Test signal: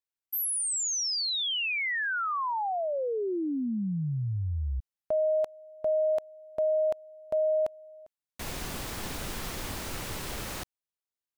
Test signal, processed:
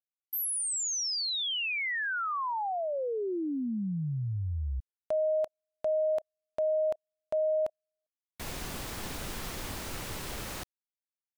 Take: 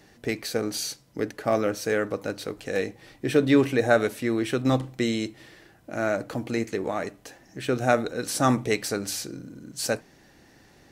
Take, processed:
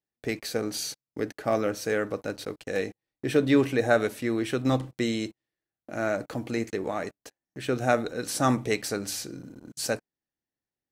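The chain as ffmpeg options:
-af "agate=range=-38dB:threshold=-44dB:ratio=16:release=28:detection=rms,volume=-2dB"

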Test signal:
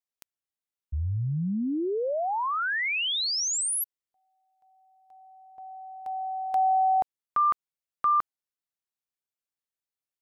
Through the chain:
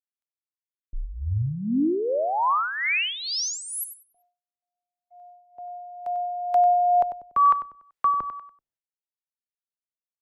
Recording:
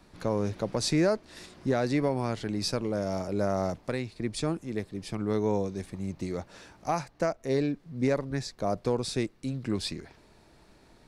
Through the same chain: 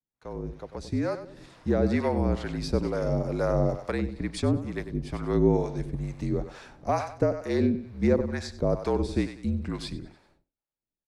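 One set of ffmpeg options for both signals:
-filter_complex "[0:a]dynaudnorm=f=130:g=21:m=13.5dB,equalizer=f=73:t=o:w=0.32:g=3.5,afreqshift=-47,aecho=1:1:96|192|288|384:0.282|0.0958|0.0326|0.0111,acrossover=split=580[a][b];[a]aeval=exprs='val(0)*(1-0.7/2+0.7/2*cos(2*PI*2.2*n/s))':c=same[c];[b]aeval=exprs='val(0)*(1-0.7/2-0.7/2*cos(2*PI*2.2*n/s))':c=same[d];[c][d]amix=inputs=2:normalize=0,highshelf=f=3k:g=-9.5,agate=range=-33dB:threshold=-41dB:ratio=3:release=351:detection=rms,volume=-5dB"

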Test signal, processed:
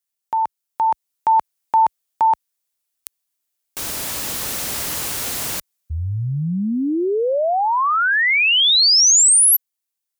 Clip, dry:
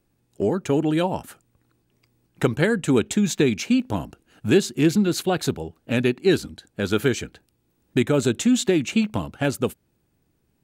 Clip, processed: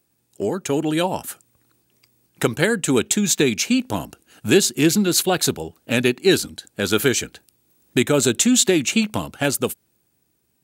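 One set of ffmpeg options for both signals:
-af "highpass=48,highshelf=f=4.5k:g=11.5,dynaudnorm=f=100:g=21:m=6dB,lowshelf=f=220:g=-5.5"

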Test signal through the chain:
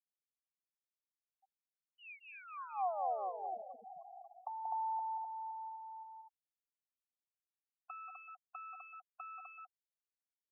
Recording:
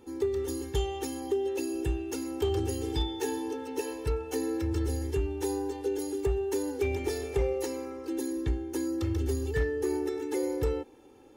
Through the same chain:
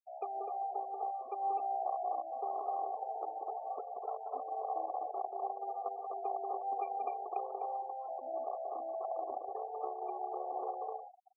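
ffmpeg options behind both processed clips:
-filter_complex "[0:a]bandreject=f=50:t=h:w=6,bandreject=f=100:t=h:w=6,bandreject=f=150:t=h:w=6,bandreject=f=200:t=h:w=6,bandreject=f=250:t=h:w=6,bandreject=f=300:t=h:w=6,bandreject=f=350:t=h:w=6,acrusher=bits=5:dc=4:mix=0:aa=0.000001,equalizer=f=125:t=o:w=0.33:g=-11,equalizer=f=315:t=o:w=0.33:g=-10,equalizer=f=800:t=o:w=0.33:g=10,equalizer=f=3.15k:t=o:w=0.33:g=-10,equalizer=f=12.5k:t=o:w=0.33:g=11,acrossover=split=260|680[a][b][c];[a]acompressor=threshold=-38dB:ratio=4[d];[b]acompressor=threshold=-35dB:ratio=4[e];[c]acompressor=threshold=-42dB:ratio=4[f];[d][e][f]amix=inputs=3:normalize=0,asplit=3[g][h][i];[g]bandpass=f=730:t=q:w=8,volume=0dB[j];[h]bandpass=f=1.09k:t=q:w=8,volume=-6dB[k];[i]bandpass=f=2.44k:t=q:w=8,volume=-9dB[l];[j][k][l]amix=inputs=3:normalize=0,asplit=2[m][n];[n]aecho=0:1:183.7|253.6:0.631|0.794[o];[m][o]amix=inputs=2:normalize=0,afftfilt=real='re*gte(hypot(re,im),0.00562)':imag='im*gte(hypot(re,im),0.00562)':win_size=1024:overlap=0.75,volume=5.5dB"

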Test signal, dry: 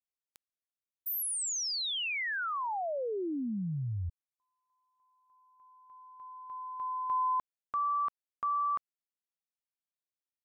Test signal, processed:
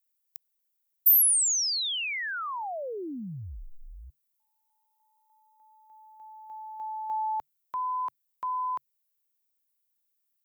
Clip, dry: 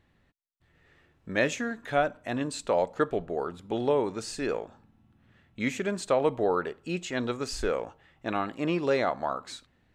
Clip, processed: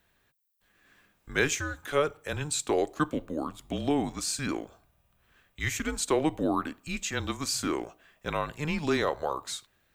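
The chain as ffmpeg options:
-af "aemphasis=mode=production:type=bsi,afreqshift=-150"

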